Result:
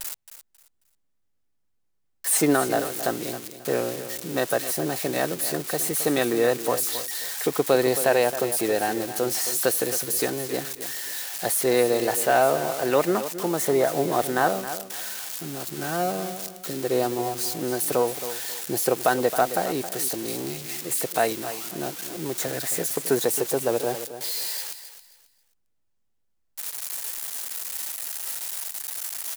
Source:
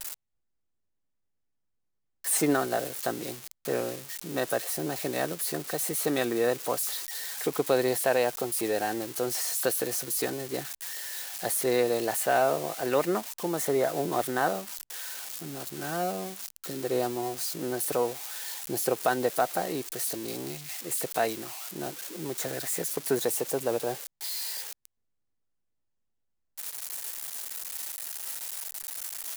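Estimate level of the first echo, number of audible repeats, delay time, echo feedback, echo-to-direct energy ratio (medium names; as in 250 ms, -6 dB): -12.0 dB, 2, 269 ms, 26%, -11.5 dB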